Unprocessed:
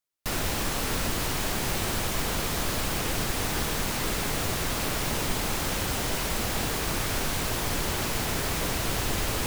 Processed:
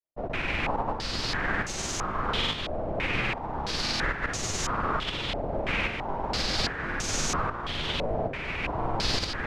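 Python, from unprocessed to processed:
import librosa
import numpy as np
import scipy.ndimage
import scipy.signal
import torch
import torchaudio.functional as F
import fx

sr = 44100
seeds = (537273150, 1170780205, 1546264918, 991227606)

y = fx.tremolo_shape(x, sr, shape='saw_up', hz=1.2, depth_pct=65)
y = fx.granulator(y, sr, seeds[0], grain_ms=100.0, per_s=20.0, spray_ms=100.0, spread_st=0)
y = fx.filter_held_lowpass(y, sr, hz=3.0, low_hz=640.0, high_hz=6500.0)
y = F.gain(torch.from_numpy(y), 1.5).numpy()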